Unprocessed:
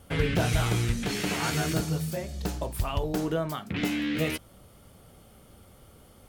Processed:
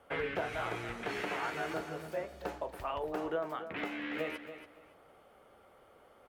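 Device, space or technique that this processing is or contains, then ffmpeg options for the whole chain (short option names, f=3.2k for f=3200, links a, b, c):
DJ mixer with the lows and highs turned down: -filter_complex "[0:a]acrossover=split=380 2400:gain=0.0891 1 0.112[a][b][c];[a][b][c]amix=inputs=3:normalize=0,alimiter=level_in=1dB:limit=-24dB:level=0:latency=1:release=439,volume=-1dB,aecho=1:1:282|564|846:0.282|0.062|0.0136"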